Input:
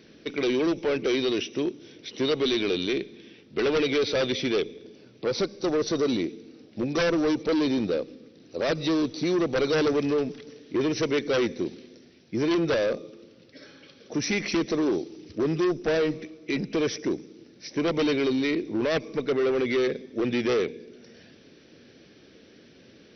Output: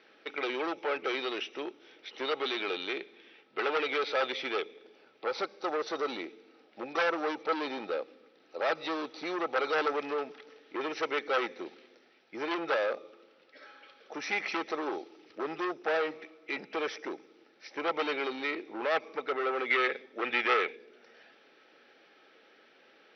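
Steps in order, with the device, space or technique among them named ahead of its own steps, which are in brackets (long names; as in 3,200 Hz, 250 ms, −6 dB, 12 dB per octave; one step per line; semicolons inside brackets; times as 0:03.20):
tin-can telephone (band-pass filter 690–2,700 Hz; hollow resonant body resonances 820/1,300 Hz, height 10 dB)
0:19.70–0:20.76: dynamic equaliser 2,200 Hz, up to +8 dB, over −47 dBFS, Q 0.73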